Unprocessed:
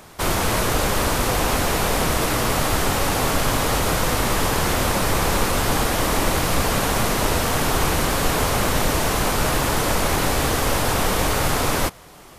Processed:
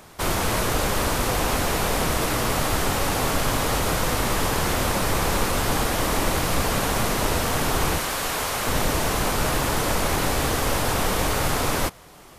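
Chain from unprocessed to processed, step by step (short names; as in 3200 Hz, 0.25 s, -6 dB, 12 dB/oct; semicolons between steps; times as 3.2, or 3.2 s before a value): 7.98–8.67 low shelf 440 Hz -11 dB; gain -2.5 dB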